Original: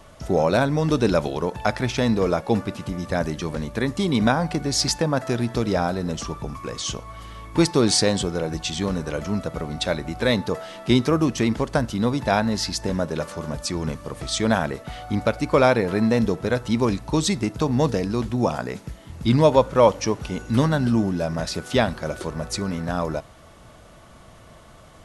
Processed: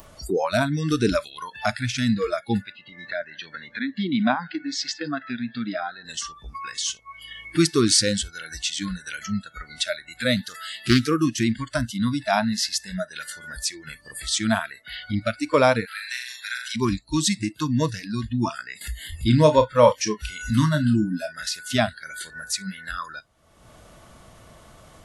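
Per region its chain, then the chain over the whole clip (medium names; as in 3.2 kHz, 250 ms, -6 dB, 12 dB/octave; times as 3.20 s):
2.72–6.05 s: high-pass 140 Hz + distance through air 170 m + delay 159 ms -19.5 dB
10.36–11.06 s: treble shelf 3.3 kHz +5 dB + loudspeaker Doppler distortion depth 0.34 ms
15.85–16.76 s: Bessel high-pass 1.3 kHz, order 6 + flutter echo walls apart 6.9 m, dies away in 0.65 s
18.81–21.32 s: upward compressor, threshold -22 dBFS + doubling 33 ms -10 dB
whole clip: spectral noise reduction 29 dB; treble shelf 6.8 kHz +5.5 dB; upward compressor, threshold -26 dBFS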